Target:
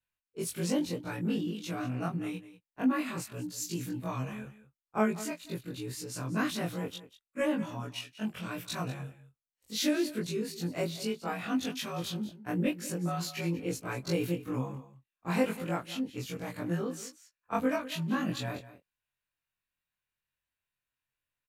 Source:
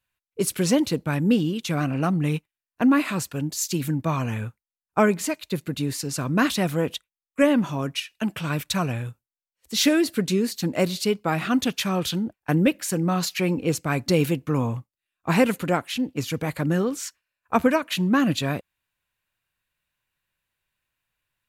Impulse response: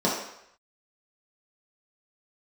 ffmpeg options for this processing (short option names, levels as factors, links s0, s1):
-filter_complex "[0:a]afftfilt=real='re':imag='-im':win_size=2048:overlap=0.75,asplit=2[s0][s1];[s1]aecho=0:1:192:0.168[s2];[s0][s2]amix=inputs=2:normalize=0,volume=0.501"